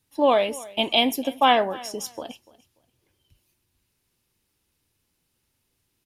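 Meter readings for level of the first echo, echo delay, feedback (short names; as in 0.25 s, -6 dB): -21.0 dB, 0.292 s, 23%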